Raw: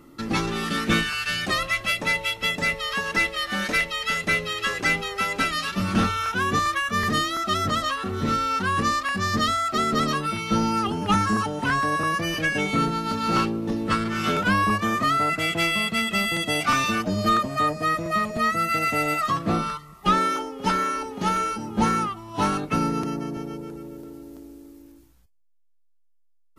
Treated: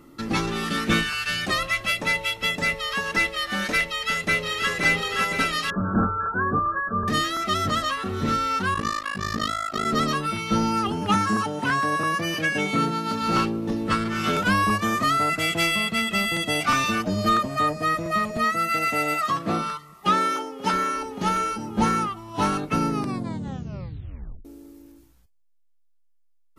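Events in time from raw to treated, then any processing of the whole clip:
3.85–4.72 echo throw 0.52 s, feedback 70%, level -4.5 dB
5.7–7.08 brick-wall FIR low-pass 1700 Hz
8.74–9.86 AM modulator 53 Hz, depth 90%
11.1–13.22 HPF 110 Hz
14.33–15.76 tone controls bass 0 dB, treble +4 dB
18.44–20.73 HPF 190 Hz 6 dB/oct
22.89 tape stop 1.56 s

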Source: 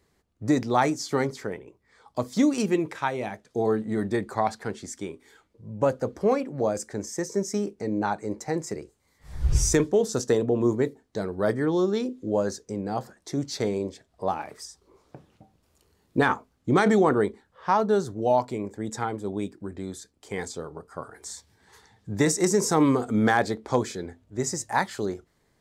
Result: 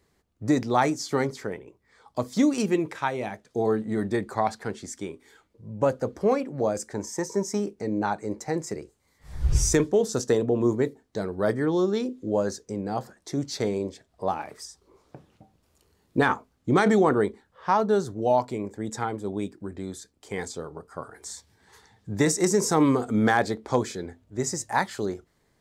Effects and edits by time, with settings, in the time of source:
6.94–7.6 bell 940 Hz +14.5 dB 0.29 oct

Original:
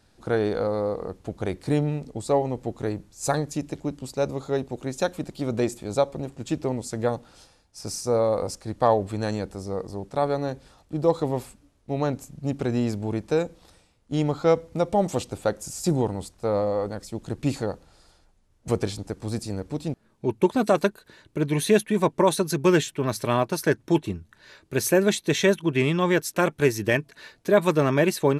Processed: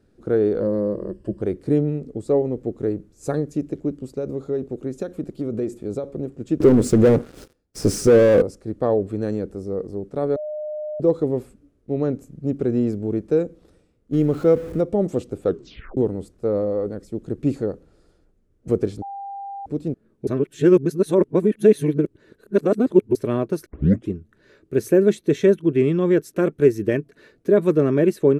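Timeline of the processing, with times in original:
0.6–1.42 ripple EQ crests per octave 1.3, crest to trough 13 dB
4.06–6.04 compressor 5:1, threshold -24 dBFS
6.6–8.42 sample leveller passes 5
10.36–11 bleep 607 Hz -24 dBFS
14.13–14.81 zero-crossing step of -30 dBFS
15.44 tape stop 0.53 s
19.02–19.66 bleep 795 Hz -21 dBFS
20.27–23.15 reverse
23.66 tape start 0.43 s
whole clip: EQ curve 110 Hz 0 dB, 420 Hz +7 dB, 900 Hz -12 dB, 1300 Hz -5 dB, 4300 Hz -13 dB, 8000 Hz -11 dB

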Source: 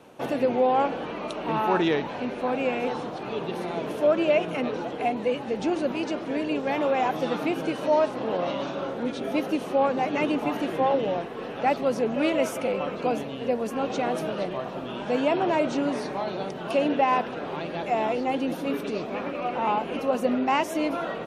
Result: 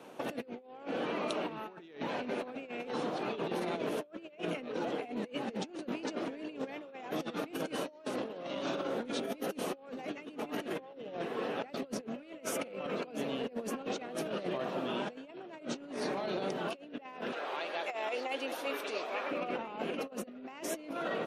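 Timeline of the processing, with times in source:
7.5–10.36 high shelf 8000 Hz +8 dB
17.32–19.31 HPF 650 Hz
whole clip: HPF 190 Hz 12 dB/oct; dynamic EQ 890 Hz, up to -7 dB, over -38 dBFS, Q 1.8; negative-ratio compressor -33 dBFS, ratio -0.5; gain -5 dB

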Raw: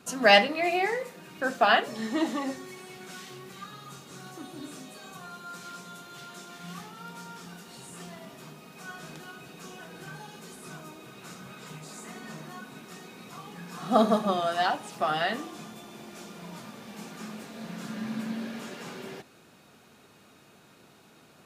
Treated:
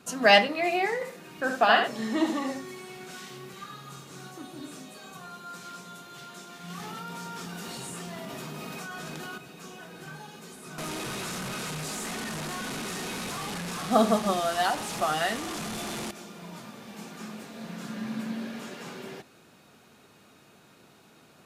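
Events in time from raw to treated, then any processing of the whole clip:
0.94–4.27 echo 73 ms -6.5 dB
6.7–9.38 fast leveller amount 100%
10.78–16.11 delta modulation 64 kbps, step -28.5 dBFS

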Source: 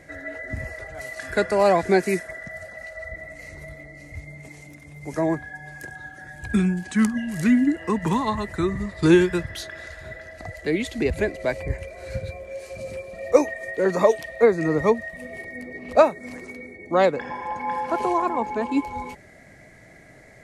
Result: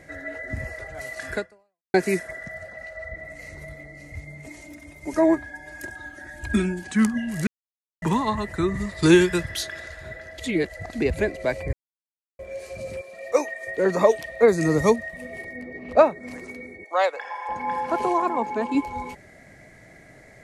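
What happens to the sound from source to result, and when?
1.35–1.94 fade out exponential
2.54–3.25 high shelf 6000 Hz -9.5 dB
4.46–6.85 comb 3.2 ms, depth 88%
7.47–8.02 mute
8.74–9.8 high shelf 2700 Hz +8 dB
10.38–10.93 reverse
11.73–12.39 mute
13.01–13.67 HPF 720 Hz 6 dB/oct
14.48–14.96 tone controls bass +4 dB, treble +14 dB
15.53–16.28 LPF 2900 Hz 6 dB/oct
16.84–17.49 HPF 600 Hz 24 dB/oct
18.08–18.75 HPF 120 Hz

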